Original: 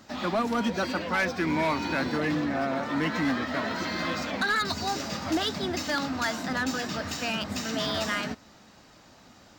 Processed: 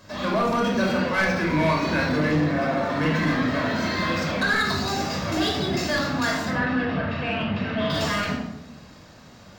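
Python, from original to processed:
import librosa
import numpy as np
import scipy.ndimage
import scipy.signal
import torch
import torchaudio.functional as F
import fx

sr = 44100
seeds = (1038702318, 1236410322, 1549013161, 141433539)

y = fx.lowpass(x, sr, hz=3000.0, slope=24, at=(6.5, 7.9))
y = fx.room_shoebox(y, sr, seeds[0], volume_m3=2500.0, walls='furnished', distance_m=5.4)
y = 10.0 ** (-13.5 / 20.0) * np.tanh(y / 10.0 ** (-13.5 / 20.0))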